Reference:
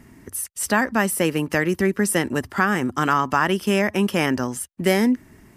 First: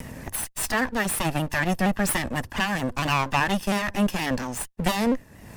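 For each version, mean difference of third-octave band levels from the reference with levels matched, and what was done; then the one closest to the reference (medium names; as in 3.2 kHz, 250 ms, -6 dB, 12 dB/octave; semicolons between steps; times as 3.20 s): 7.5 dB: comb filter that takes the minimum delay 1.1 ms; upward compressor, threshold -27 dBFS; vibrato with a chosen wave saw down 4.3 Hz, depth 100 cents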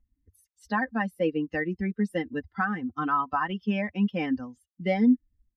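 13.0 dB: expander on every frequency bin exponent 2; distance through air 330 m; comb 3.9 ms, depth 73%; trim -3.5 dB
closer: first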